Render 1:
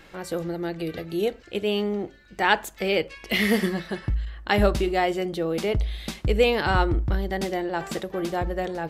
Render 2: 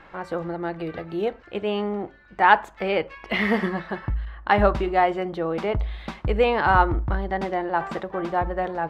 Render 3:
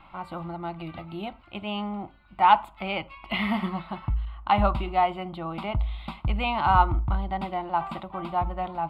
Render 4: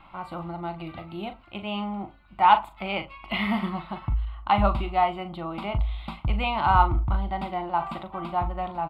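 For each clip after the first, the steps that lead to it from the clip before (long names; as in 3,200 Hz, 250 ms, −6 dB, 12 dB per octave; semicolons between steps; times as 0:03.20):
drawn EQ curve 450 Hz 0 dB, 1,000 Hz +10 dB, 12,000 Hz −21 dB; level −1 dB
phaser with its sweep stopped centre 1,700 Hz, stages 6
double-tracking delay 40 ms −10 dB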